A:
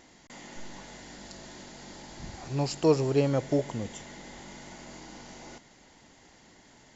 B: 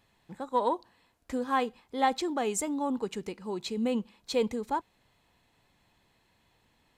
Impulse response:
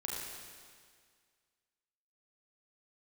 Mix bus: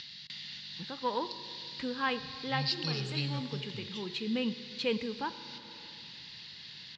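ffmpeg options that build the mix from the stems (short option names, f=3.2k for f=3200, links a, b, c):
-filter_complex "[0:a]firequalizer=gain_entry='entry(160,0);entry(300,-17);entry(3700,8);entry(6700,-26)':delay=0.05:min_phase=1,aexciter=amount=14:drive=4.4:freq=4.6k,lowshelf=f=330:g=-5,volume=-4dB,asplit=3[a][b][c];[b]volume=-18.5dB[d];[1:a]adelay=500,volume=-1.5dB,asplit=2[e][f];[f]volume=-12dB[g];[c]apad=whole_len=329813[h];[e][h]sidechaincompress=threshold=-41dB:ratio=8:attack=29:release=651[i];[2:a]atrim=start_sample=2205[j];[d][g]amix=inputs=2:normalize=0[k];[k][j]afir=irnorm=-1:irlink=0[l];[a][i][l]amix=inputs=3:normalize=0,equalizer=f=780:w=1.1:g=-6,acompressor=mode=upward:threshold=-37dB:ratio=2.5,highpass=110,equalizer=f=150:t=q:w=4:g=5,equalizer=f=260:t=q:w=4:g=-3,equalizer=f=390:t=q:w=4:g=-4,equalizer=f=660:t=q:w=4:g=-7,equalizer=f=1.7k:t=q:w=4:g=5,equalizer=f=2.8k:t=q:w=4:g=9,lowpass=f=4.7k:w=0.5412,lowpass=f=4.7k:w=1.3066"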